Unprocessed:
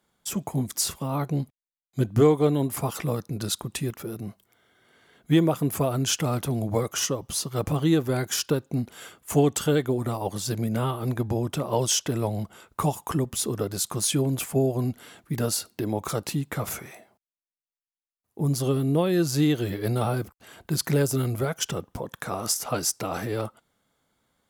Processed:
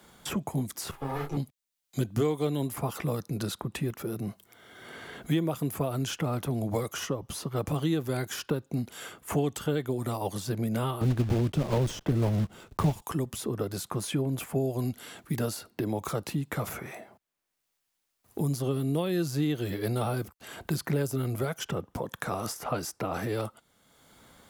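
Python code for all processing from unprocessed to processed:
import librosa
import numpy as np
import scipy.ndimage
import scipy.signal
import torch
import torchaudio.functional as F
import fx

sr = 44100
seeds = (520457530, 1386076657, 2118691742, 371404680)

y = fx.chain(x, sr, fx.lower_of_two(delay_ms=7.4),
    fx.comb(ms=2.4, depth=0.67),
    fx.detune_double(cents=58), at=(0.91, 1.37))
y = fx.chain(y, sr, fx.block_float(bits=3),
    fx.tilt_eq(slope=-4.0), at=(11.01, 13.02))
y = fx.dynamic_eq(y, sr, hz=6900.0, q=0.73, threshold_db=-41.0, ratio=4.0, max_db=-5)
y = fx.band_squash(y, sr, depth_pct=70)
y = y * 10.0 ** (-5.0 / 20.0)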